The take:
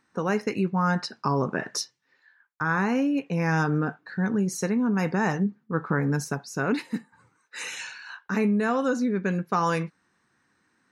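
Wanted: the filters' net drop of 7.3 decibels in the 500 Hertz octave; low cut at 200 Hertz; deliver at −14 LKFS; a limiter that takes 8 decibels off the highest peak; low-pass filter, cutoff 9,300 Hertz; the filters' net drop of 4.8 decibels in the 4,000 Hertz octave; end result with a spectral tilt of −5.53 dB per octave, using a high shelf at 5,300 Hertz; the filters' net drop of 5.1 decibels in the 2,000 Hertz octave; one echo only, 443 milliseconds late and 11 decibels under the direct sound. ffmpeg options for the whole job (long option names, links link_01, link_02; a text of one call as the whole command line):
ffmpeg -i in.wav -af "highpass=200,lowpass=9300,equalizer=frequency=500:width_type=o:gain=-8.5,equalizer=frequency=2000:width_type=o:gain=-5.5,equalizer=frequency=4000:width_type=o:gain=-3.5,highshelf=frequency=5300:gain=-3,alimiter=limit=-23dB:level=0:latency=1,aecho=1:1:443:0.282,volume=19dB" out.wav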